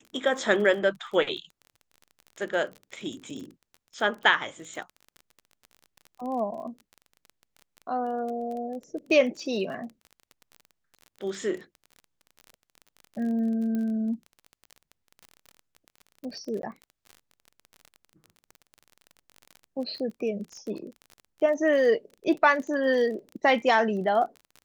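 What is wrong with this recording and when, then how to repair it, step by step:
crackle 28/s -35 dBFS
13.75 pop -21 dBFS
16.62–16.63 gap 12 ms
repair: de-click; interpolate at 16.62, 12 ms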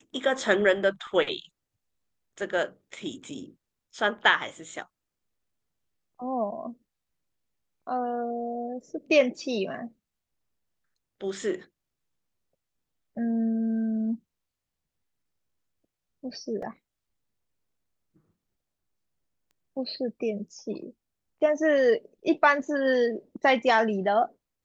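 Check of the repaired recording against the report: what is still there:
none

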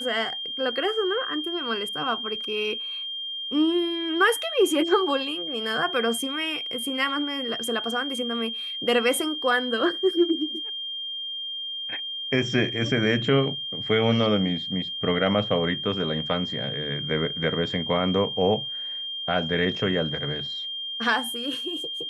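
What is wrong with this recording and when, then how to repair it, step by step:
tone 3200 Hz -30 dBFS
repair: notch 3200 Hz, Q 30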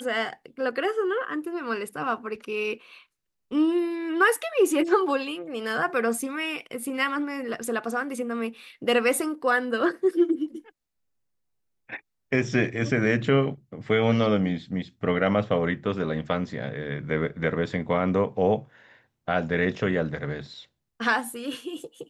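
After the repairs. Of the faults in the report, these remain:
none

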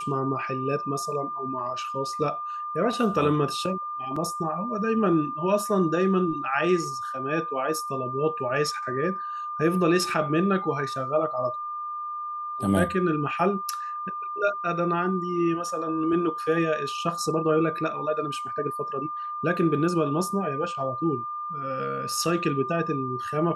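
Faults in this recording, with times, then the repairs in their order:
tone 1200 Hz -30 dBFS
4.16 gap 4.2 ms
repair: notch 1200 Hz, Q 30; interpolate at 4.16, 4.2 ms

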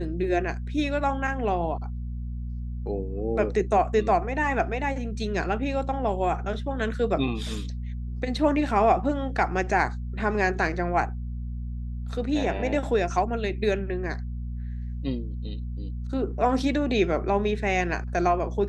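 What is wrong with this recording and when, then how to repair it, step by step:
hum 60 Hz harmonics 4 -32 dBFS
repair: de-hum 60 Hz, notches 4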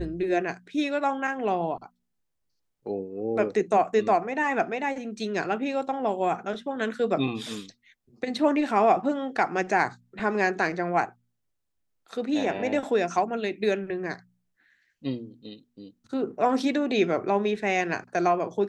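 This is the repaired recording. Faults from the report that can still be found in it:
none

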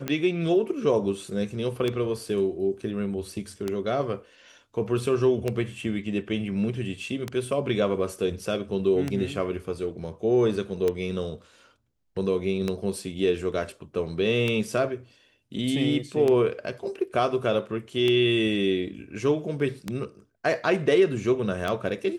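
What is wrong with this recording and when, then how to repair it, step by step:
tick 33 1/3 rpm -13 dBFS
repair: de-click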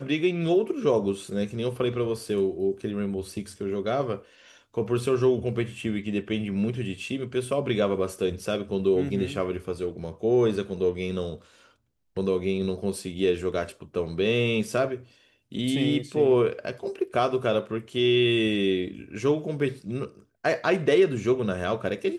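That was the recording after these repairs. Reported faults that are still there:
none

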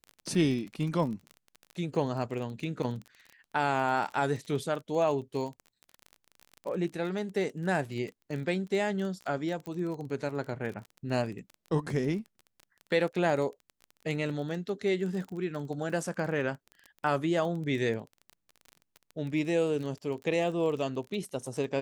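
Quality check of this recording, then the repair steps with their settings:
crackle 25/s -36 dBFS
9.66 pop -25 dBFS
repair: de-click

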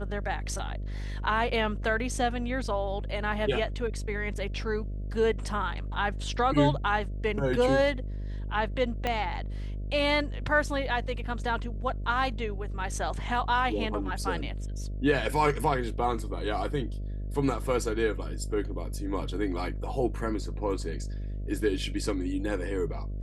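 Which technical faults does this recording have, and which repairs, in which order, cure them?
buzz 50 Hz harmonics 13 -34 dBFS
9.07 pop -15 dBFS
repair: de-click; de-hum 50 Hz, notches 13

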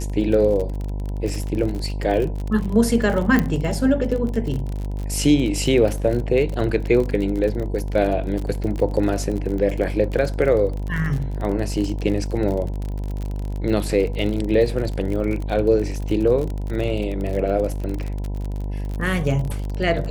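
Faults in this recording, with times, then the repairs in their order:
buzz 50 Hz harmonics 20 -26 dBFS
crackle 45/s -26 dBFS
3.39 pop -7 dBFS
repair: de-click; de-hum 50 Hz, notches 20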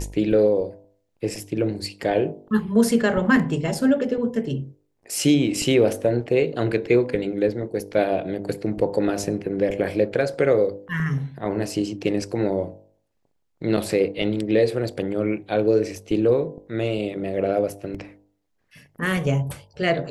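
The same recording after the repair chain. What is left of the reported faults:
3.39 pop

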